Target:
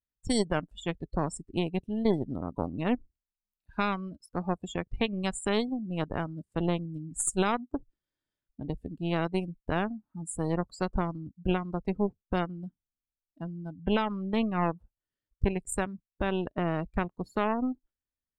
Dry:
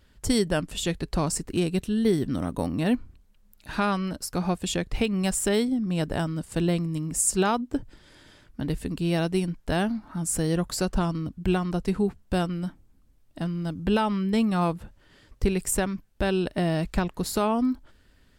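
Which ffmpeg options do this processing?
-af "aeval=exprs='0.251*(cos(1*acos(clip(val(0)/0.251,-1,1)))-cos(1*PI/2))+0.0562*(cos(2*acos(clip(val(0)/0.251,-1,1)))-cos(2*PI/2))+0.0282*(cos(3*acos(clip(val(0)/0.251,-1,1)))-cos(3*PI/2))+0.00891*(cos(7*acos(clip(val(0)/0.251,-1,1)))-cos(7*PI/2))+0.00398*(cos(8*acos(clip(val(0)/0.251,-1,1)))-cos(8*PI/2))':c=same,afftdn=nr=28:nf=-32,volume=0.708"

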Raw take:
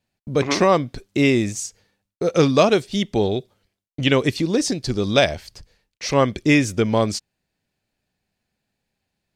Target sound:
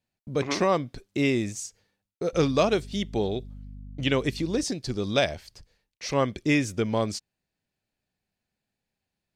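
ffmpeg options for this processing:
-filter_complex "[0:a]asettb=1/sr,asplit=3[s0][s1][s2];[s0]atrim=end=2.334[s3];[s1]atrim=start=2.33:end=4.64,asetpts=PTS-STARTPTS,afade=t=in:d=0.004:c=qsin,afade=t=out:st=2.306:d=0.004:c=qsin,aeval=exprs='val(0)+0.0224*(sin(2*PI*50*n/s)+sin(2*PI*2*50*n/s)/2+sin(2*PI*3*50*n/s)/3+sin(2*PI*4*50*n/s)/4+sin(2*PI*5*50*n/s)/5)':c=same[s4];[s2]atrim=start=4.636[s5];[s3][s4]acrossfade=d=0.004:c1=hsin:c2=qsin[s6];[s6][s5]acrossfade=d=0.004:c1=qsin:c2=hsin,volume=0.447"

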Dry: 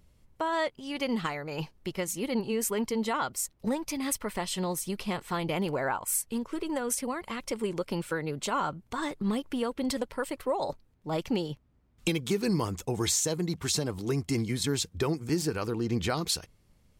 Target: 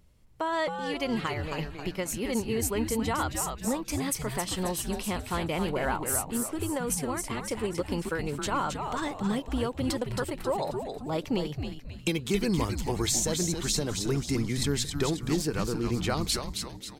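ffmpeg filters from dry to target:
-filter_complex "[0:a]asplit=6[s0][s1][s2][s3][s4][s5];[s1]adelay=269,afreqshift=-140,volume=0.531[s6];[s2]adelay=538,afreqshift=-280,volume=0.24[s7];[s3]adelay=807,afreqshift=-420,volume=0.107[s8];[s4]adelay=1076,afreqshift=-560,volume=0.0484[s9];[s5]adelay=1345,afreqshift=-700,volume=0.0219[s10];[s0][s6][s7][s8][s9][s10]amix=inputs=6:normalize=0"

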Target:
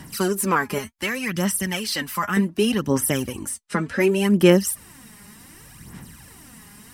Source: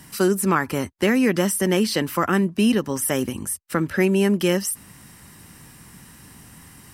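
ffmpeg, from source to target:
-filter_complex "[0:a]asettb=1/sr,asplit=3[s0][s1][s2];[s0]atrim=end=0.784[s3];[s1]atrim=start=0.78:end=2.37,asetpts=PTS-STARTPTS,afade=t=in:d=0.004:c=qsin,afade=t=out:st=1.586:d=0.004:c=qsin,equalizer=f=380:w=0.63:g=-11.5[s4];[s2]atrim=start=2.366[s5];[s3][s4]acrossfade=d=0.004:c1=hsin:c2=qsin[s6];[s6][s5]acrossfade=d=0.004:c1=qsin:c2=hsin,asettb=1/sr,asplit=3[s7][s8][s9];[s7]atrim=end=3.494[s10];[s8]atrim=start=3.49:end=4,asetpts=PTS-STARTPTS,afade=t=in:d=0.004:c=qsin,afade=t=out:st=0.506:d=0.004:c=qsin,lowpass=f=9300:w=0.5412,lowpass=f=9300:w=1.3066[s11];[s9]atrim=start=3.996[s12];[s10][s11]acrossfade=d=0.004:c1=hsin:c2=qsin[s13];[s13][s12]acrossfade=d=0.004:c1=qsin:c2=hsin,aphaser=in_gain=1:out_gain=1:delay=4.9:decay=0.6:speed=0.67:type=sinusoidal,volume=0.891"

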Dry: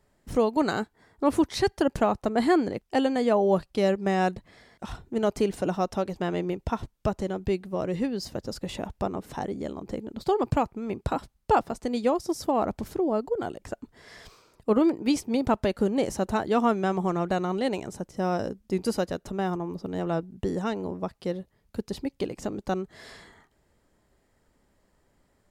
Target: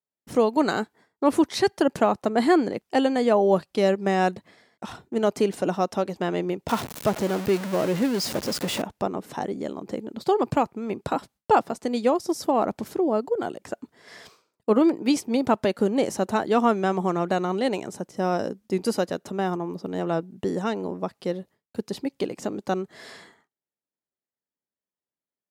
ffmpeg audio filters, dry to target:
-filter_complex "[0:a]asettb=1/sr,asplit=3[s0][s1][s2];[s0]atrim=end=6.684[s3];[s1]atrim=start=6.68:end=8.82,asetpts=PTS-STARTPTS,afade=t=in:d=0.004:c=qsin,afade=t=out:st=2.136:d=0.004:c=qsin,aeval=exprs='val(0)+0.5*0.0355*sgn(val(0))':c=same[s4];[s2]atrim=start=8.816[s5];[s3][s4]acrossfade=d=0.004:c1=hsin:c2=qsin[s6];[s6][s5]acrossfade=d=0.004:c1=qsin:c2=hsin,highpass=170,agate=range=0.0224:threshold=0.00398:ratio=3:detection=peak,volume=1.41"

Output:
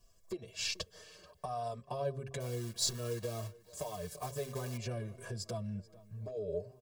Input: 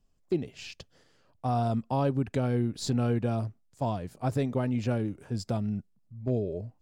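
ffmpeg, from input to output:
-filter_complex "[0:a]asettb=1/sr,asplit=3[s0][s1][s2];[s0]atrim=end=2.404[s3];[s1]atrim=start=2.4:end=4.77,asetpts=PTS-STARTPTS,afade=t=in:d=0.004:c=qsin,afade=t=out:st=2.366:d=0.004:c=qsin,acrusher=bits=4:mode=log:mix=0:aa=0.000001[s4];[s2]atrim=start=4.766[s5];[s3][s4]acrossfade=d=0.004:c1=hsin:c2=qsin[s6];[s6][s5]acrossfade=d=0.004:c1=qsin:c2=hsin,acompressor=threshold=0.0112:ratio=6,highshelf=f=3300:g=-10.5,bandreject=f=520:w=12,aecho=1:1:1.8:0.88,asplit=2[s7][s8];[s8]adelay=435,lowpass=f=3700:p=1,volume=0.0794,asplit=2[s9][s10];[s10]adelay=435,lowpass=f=3700:p=1,volume=0.52,asplit=2[s11][s12];[s12]adelay=435,lowpass=f=3700:p=1,volume=0.52,asplit=2[s13][s14];[s14]adelay=435,lowpass=f=3700:p=1,volume=0.52[s15];[s7][s9][s11][s13][s15]amix=inputs=5:normalize=0,alimiter=level_in=2.99:limit=0.0631:level=0:latency=1:release=366,volume=0.335,bass=f=250:g=-7,treble=f=4000:g=15,bandreject=f=135.1:t=h:w=4,bandreject=f=270.2:t=h:w=4,bandreject=f=405.3:t=h:w=4,bandreject=f=540.4:t=h:w=4,asplit=2[s16][s17];[s17]adelay=5.5,afreqshift=-0.39[s18];[s16][s18]amix=inputs=2:normalize=1,volume=2.99"

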